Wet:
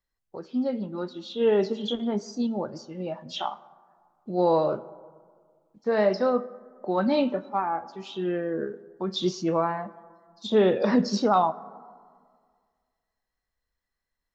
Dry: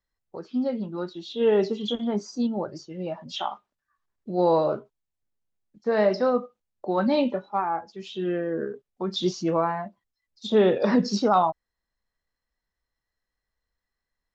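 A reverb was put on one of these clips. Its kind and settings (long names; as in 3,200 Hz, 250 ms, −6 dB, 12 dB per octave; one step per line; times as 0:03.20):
dense smooth reverb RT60 1.9 s, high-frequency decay 0.35×, DRR 17 dB
level −1 dB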